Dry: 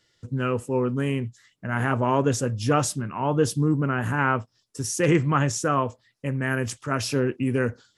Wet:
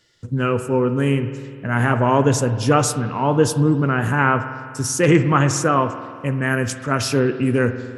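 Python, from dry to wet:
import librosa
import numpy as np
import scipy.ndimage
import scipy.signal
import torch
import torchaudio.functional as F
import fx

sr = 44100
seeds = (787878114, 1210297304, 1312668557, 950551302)

y = fx.rev_spring(x, sr, rt60_s=2.1, pass_ms=(50,), chirp_ms=60, drr_db=10.0)
y = F.gain(torch.from_numpy(y), 5.5).numpy()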